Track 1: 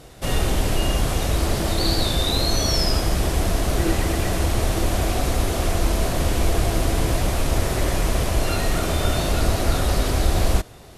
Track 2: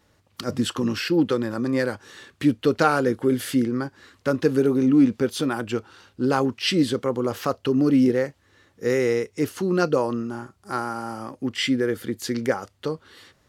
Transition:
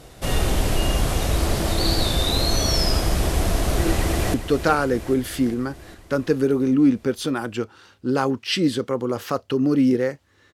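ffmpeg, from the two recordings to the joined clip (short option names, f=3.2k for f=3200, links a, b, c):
-filter_complex "[0:a]apad=whole_dur=10.53,atrim=end=10.53,atrim=end=4.342[a];[1:a]atrim=start=2.488:end=8.68[b];[a][b]acrossfade=d=0.004:c1=hsin:c2=hsin,asplit=2[c][d];[d]afade=t=in:st=3.74:d=0.01,afade=t=out:st=4.34:d=0.01,aecho=0:1:400|800|1200|1600|2000|2400|2800|3200:0.281838|0.183195|0.119077|0.0773998|0.0503099|0.0327014|0.0212559|0.0138164[e];[c][e]amix=inputs=2:normalize=0"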